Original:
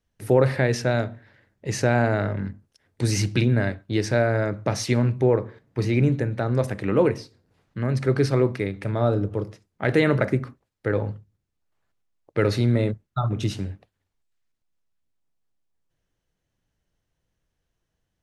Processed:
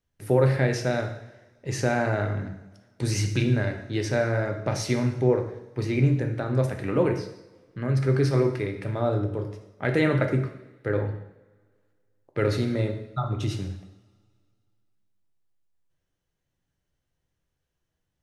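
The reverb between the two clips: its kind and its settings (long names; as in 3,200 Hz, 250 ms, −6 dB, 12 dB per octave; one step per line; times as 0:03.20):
coupled-rooms reverb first 0.78 s, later 2.3 s, from −21 dB, DRR 4.5 dB
level −4 dB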